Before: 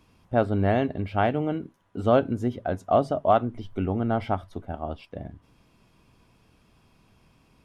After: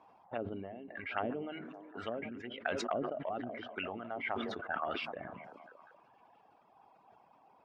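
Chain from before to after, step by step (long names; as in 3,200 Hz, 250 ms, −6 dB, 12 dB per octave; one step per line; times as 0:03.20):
high-pass filter 83 Hz 6 dB per octave
treble cut that deepens with the level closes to 360 Hz, closed at −18.5 dBFS
reverb reduction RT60 1.4 s
envelope filter 780–2,900 Hz, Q 5.3, up, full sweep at −25.5 dBFS
echo through a band-pass that steps 194 ms, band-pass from 180 Hz, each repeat 0.7 octaves, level −9 dB
level that may fall only so fast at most 29 dB per second
level +14 dB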